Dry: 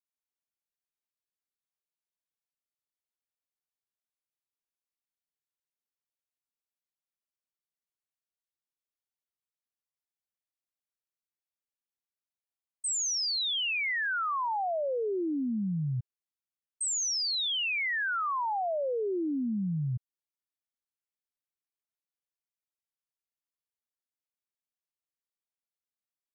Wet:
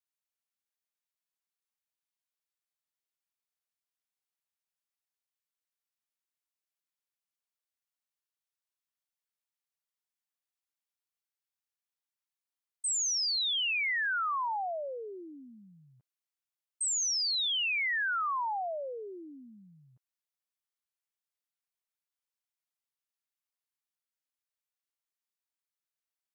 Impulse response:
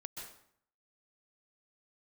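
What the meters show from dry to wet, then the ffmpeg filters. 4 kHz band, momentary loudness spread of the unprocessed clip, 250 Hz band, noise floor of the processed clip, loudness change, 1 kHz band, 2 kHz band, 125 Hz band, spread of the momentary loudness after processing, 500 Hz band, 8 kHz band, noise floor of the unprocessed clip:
0.0 dB, 6 LU, -18.5 dB, under -85 dBFS, 0.0 dB, -1.5 dB, 0.0 dB, under -25 dB, 15 LU, -8.0 dB, 0.0 dB, under -85 dBFS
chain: -af "highpass=780"

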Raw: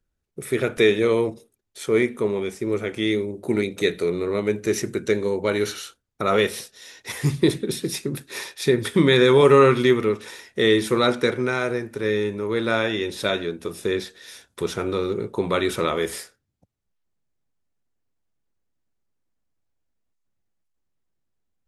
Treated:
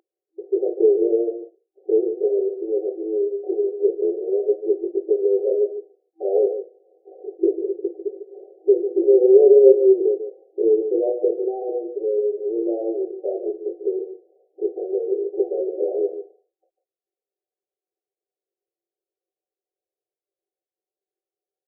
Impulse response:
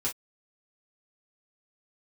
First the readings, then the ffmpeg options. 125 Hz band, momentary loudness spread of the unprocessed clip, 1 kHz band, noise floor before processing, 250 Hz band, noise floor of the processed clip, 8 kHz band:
under -40 dB, 13 LU, -14.0 dB, -77 dBFS, -2.0 dB, under -85 dBFS, under -40 dB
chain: -filter_complex "[0:a]aecho=1:1:146:0.316[a];[1:a]atrim=start_sample=2205[b];[a][b]afir=irnorm=-1:irlink=0,aeval=exprs='val(0)+0.0112*(sin(2*PI*60*n/s)+sin(2*PI*2*60*n/s)/2+sin(2*PI*3*60*n/s)/3+sin(2*PI*4*60*n/s)/4+sin(2*PI*5*60*n/s)/5)':c=same,afftfilt=real='re*between(b*sr/4096,330,780)':imag='im*between(b*sr/4096,330,780)':win_size=4096:overlap=0.75,volume=-4dB"

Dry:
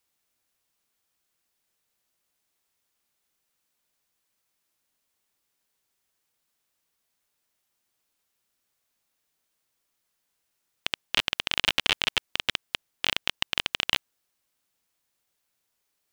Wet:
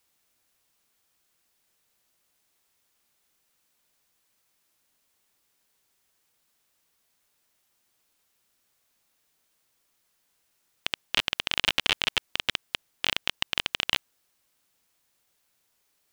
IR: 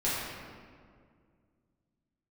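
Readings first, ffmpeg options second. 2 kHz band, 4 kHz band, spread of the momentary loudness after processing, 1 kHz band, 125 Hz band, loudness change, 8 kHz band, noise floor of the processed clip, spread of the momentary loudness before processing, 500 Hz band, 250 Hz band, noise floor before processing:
-0.5 dB, -0.5 dB, 9 LU, -0.5 dB, -0.5 dB, -0.5 dB, -0.5 dB, -73 dBFS, 9 LU, -0.5 dB, -0.5 dB, -78 dBFS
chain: -af "alimiter=limit=-11dB:level=0:latency=1:release=31,volume=5.5dB"

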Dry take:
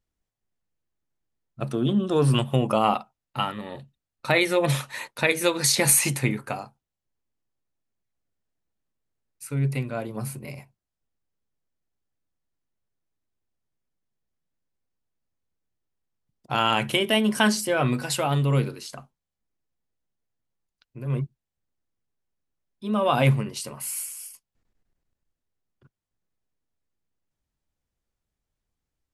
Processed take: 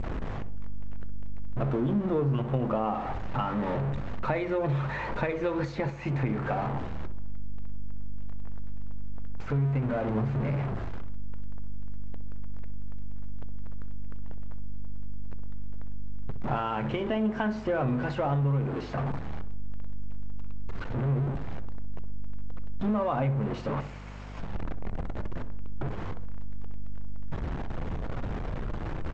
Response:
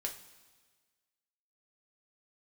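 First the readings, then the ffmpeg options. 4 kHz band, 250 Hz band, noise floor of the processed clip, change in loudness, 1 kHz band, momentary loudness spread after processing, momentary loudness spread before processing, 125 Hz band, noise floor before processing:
-18.5 dB, -2.5 dB, -35 dBFS, -7.5 dB, -4.5 dB, 18 LU, 17 LU, -1.5 dB, under -85 dBFS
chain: -filter_complex "[0:a]aeval=exprs='val(0)+0.5*0.0708*sgn(val(0))':c=same,asplit=2[a][b];[b]adelay=64,lowpass=f=910:p=1,volume=-10dB,asplit=2[c][d];[d]adelay=64,lowpass=f=910:p=1,volume=0.51,asplit=2[e][f];[f]adelay=64,lowpass=f=910:p=1,volume=0.51,asplit=2[g][h];[h]adelay=64,lowpass=f=910:p=1,volume=0.51,asplit=2[i][j];[j]adelay=64,lowpass=f=910:p=1,volume=0.51,asplit=2[k][l];[l]adelay=64,lowpass=f=910:p=1,volume=0.51[m];[a][c][e][g][i][k][m]amix=inputs=7:normalize=0,aeval=exprs='val(0)+0.0126*(sin(2*PI*50*n/s)+sin(2*PI*2*50*n/s)/2+sin(2*PI*3*50*n/s)/3+sin(2*PI*4*50*n/s)/4+sin(2*PI*5*50*n/s)/5)':c=same,acompressor=threshold=-23dB:ratio=6,lowpass=1.4k,asplit=2[n][o];[1:a]atrim=start_sample=2205,lowpass=6.4k[p];[o][p]afir=irnorm=-1:irlink=0,volume=-13.5dB[q];[n][q]amix=inputs=2:normalize=0,volume=-2.5dB" -ar 16000 -c:a g722

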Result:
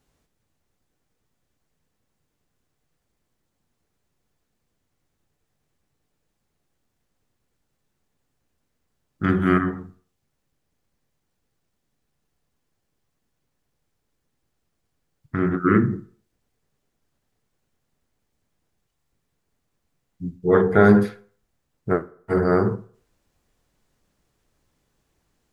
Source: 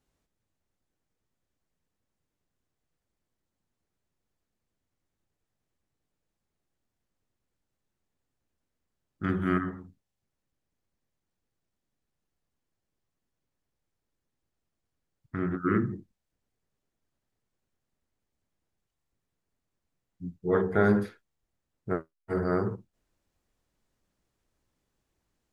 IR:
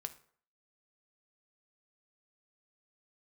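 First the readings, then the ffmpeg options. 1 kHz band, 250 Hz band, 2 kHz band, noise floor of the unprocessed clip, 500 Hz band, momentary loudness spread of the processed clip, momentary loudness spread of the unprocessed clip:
+8.5 dB, +9.0 dB, +8.5 dB, -84 dBFS, +9.0 dB, 20 LU, 19 LU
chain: -filter_complex "[0:a]asplit=2[a][b];[1:a]atrim=start_sample=2205[c];[b][c]afir=irnorm=-1:irlink=0,volume=5dB[d];[a][d]amix=inputs=2:normalize=0,volume=1.5dB"

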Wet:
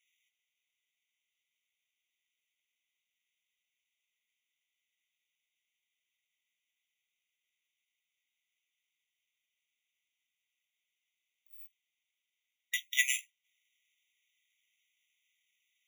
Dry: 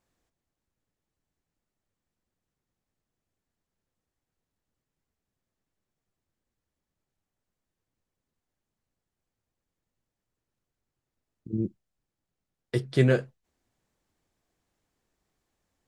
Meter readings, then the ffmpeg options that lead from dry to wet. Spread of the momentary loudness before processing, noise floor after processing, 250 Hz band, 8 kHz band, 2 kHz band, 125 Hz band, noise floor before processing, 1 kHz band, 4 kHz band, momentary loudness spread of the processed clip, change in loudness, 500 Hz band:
12 LU, under -85 dBFS, under -40 dB, n/a, +3.0 dB, under -40 dB, under -85 dBFS, under -35 dB, +6.0 dB, 22 LU, -4.0 dB, under -40 dB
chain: -af "acrusher=samples=5:mix=1:aa=0.000001,afftfilt=real='re*eq(mod(floor(b*sr/1024/1900),2),1)':imag='im*eq(mod(floor(b*sr/1024/1900),2),1)':win_size=1024:overlap=0.75,volume=8.5dB"

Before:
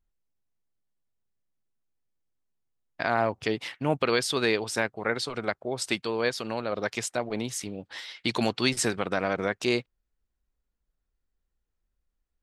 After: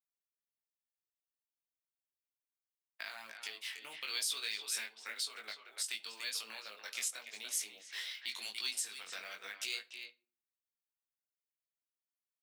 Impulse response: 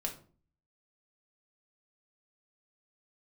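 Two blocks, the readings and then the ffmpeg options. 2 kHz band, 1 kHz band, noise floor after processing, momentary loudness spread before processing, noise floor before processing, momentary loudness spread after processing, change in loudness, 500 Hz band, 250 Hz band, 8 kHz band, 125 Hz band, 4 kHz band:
-12.0 dB, -22.5 dB, under -85 dBFS, 7 LU, -81 dBFS, 10 LU, -11.0 dB, -30.5 dB, -35.5 dB, -3.5 dB, under -40 dB, -5.5 dB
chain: -filter_complex "[0:a]acrossover=split=220|3100[a][b][c];[b]acompressor=threshold=-36dB:ratio=12[d];[a][d][c]amix=inputs=3:normalize=0,aderivative,agate=range=-11dB:threshold=-56dB:ratio=16:detection=peak,acrossover=split=220 2700:gain=0.112 1 0.0794[e][f][g];[e][f][g]amix=inputs=3:normalize=0,acrusher=bits=8:mode=log:mix=0:aa=0.000001,asplit=2[h][i];[i]adelay=290,highpass=300,lowpass=3.4k,asoftclip=type=hard:threshold=-40dB,volume=-7dB[j];[h][j]amix=inputs=2:normalize=0,flanger=delay=18.5:depth=3.6:speed=0.92,crystalizer=i=7.5:c=0,asplit=2[k][l];[1:a]atrim=start_sample=2205[m];[l][m]afir=irnorm=-1:irlink=0,volume=-8.5dB[n];[k][n]amix=inputs=2:normalize=0,alimiter=level_in=3.5dB:limit=-24dB:level=0:latency=1:release=360,volume=-3.5dB,volume=3dB"

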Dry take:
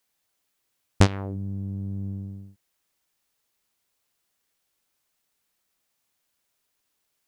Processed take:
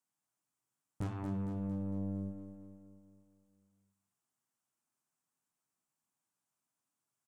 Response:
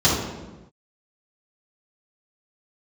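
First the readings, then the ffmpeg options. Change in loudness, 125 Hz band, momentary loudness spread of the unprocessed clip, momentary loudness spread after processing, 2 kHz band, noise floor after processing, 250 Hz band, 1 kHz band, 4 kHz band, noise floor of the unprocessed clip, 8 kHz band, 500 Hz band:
-11.5 dB, -12.5 dB, 15 LU, 16 LU, under -20 dB, under -85 dBFS, -7.0 dB, -15.0 dB, under -25 dB, -77 dBFS, under -25 dB, -13.5 dB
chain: -filter_complex "[0:a]bandreject=f=110.3:t=h:w=4,bandreject=f=220.6:t=h:w=4,bandreject=f=330.9:t=h:w=4,bandreject=f=441.2:t=h:w=4,bandreject=f=551.5:t=h:w=4,bandreject=f=661.8:t=h:w=4,bandreject=f=772.1:t=h:w=4,bandreject=f=882.4:t=h:w=4,bandreject=f=992.7:t=h:w=4,bandreject=f=1.103k:t=h:w=4,bandreject=f=1.2133k:t=h:w=4,bandreject=f=1.3236k:t=h:w=4,bandreject=f=1.4339k:t=h:w=4,bandreject=f=1.5442k:t=h:w=4,bandreject=f=1.6545k:t=h:w=4,bandreject=f=1.7648k:t=h:w=4,bandreject=f=1.8751k:t=h:w=4,bandreject=f=1.9854k:t=h:w=4,bandreject=f=2.0957k:t=h:w=4,bandreject=f=2.206k:t=h:w=4,bandreject=f=2.3163k:t=h:w=4,bandreject=f=2.4266k:t=h:w=4,bandreject=f=2.5369k:t=h:w=4,bandreject=f=2.6472k:t=h:w=4,bandreject=f=2.7575k:t=h:w=4,bandreject=f=2.8678k:t=h:w=4,bandreject=f=2.9781k:t=h:w=4,bandreject=f=3.0884k:t=h:w=4,bandreject=f=3.1987k:t=h:w=4,bandreject=f=3.309k:t=h:w=4,bandreject=f=3.4193k:t=h:w=4,bandreject=f=3.5296k:t=h:w=4,bandreject=f=3.6399k:t=h:w=4,bandreject=f=3.7502k:t=h:w=4,bandreject=f=3.8605k:t=h:w=4,bandreject=f=3.9708k:t=h:w=4,bandreject=f=4.0811k:t=h:w=4,bandreject=f=4.1914k:t=h:w=4,bandreject=f=4.3017k:t=h:w=4,agate=range=-12dB:threshold=-35dB:ratio=16:detection=peak,equalizer=f=78:t=o:w=0.39:g=-9.5,aeval=exprs='(mod(1.68*val(0)+1,2)-1)/1.68':c=same,acompressor=threshold=-33dB:ratio=3,flanger=delay=8.3:depth=4.6:regen=-74:speed=0.44:shape=triangular,equalizer=f=125:t=o:w=1:g=12,equalizer=f=250:t=o:w=1:g=4,equalizer=f=500:t=o:w=1:g=-11,equalizer=f=2k:t=o:w=1:g=-9,equalizer=f=4k:t=o:w=1:g=-11,equalizer=f=8k:t=o:w=1:g=8,asplit=2[a][b];[b]highpass=f=720:p=1,volume=27dB,asoftclip=type=tanh:threshold=-17.5dB[c];[a][c]amix=inputs=2:normalize=0,lowpass=f=1.3k:p=1,volume=-6dB,asoftclip=type=tanh:threshold=-26.5dB,aecho=1:1:228|456|684|912|1140|1368|1596:0.422|0.232|0.128|0.0702|0.0386|0.0212|0.0117,volume=-5dB"

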